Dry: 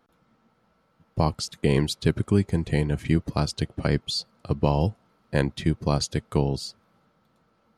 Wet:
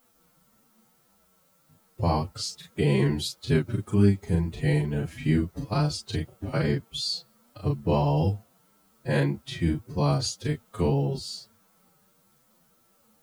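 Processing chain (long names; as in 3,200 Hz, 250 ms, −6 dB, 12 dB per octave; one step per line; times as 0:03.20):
background noise blue −64 dBFS
chorus effect 2.9 Hz, delay 20 ms, depth 2.9 ms
phase-vocoder stretch with locked phases 1.7×
level +1.5 dB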